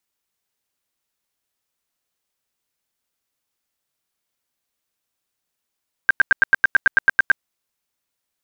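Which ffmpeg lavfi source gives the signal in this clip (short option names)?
-f lavfi -i "aevalsrc='0.398*sin(2*PI*1580*mod(t,0.11))*lt(mod(t,0.11),25/1580)':d=1.32:s=44100"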